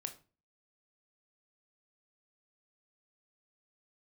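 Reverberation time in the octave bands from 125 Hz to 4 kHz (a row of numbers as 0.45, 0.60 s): 0.50, 0.45, 0.35, 0.35, 0.30, 0.25 s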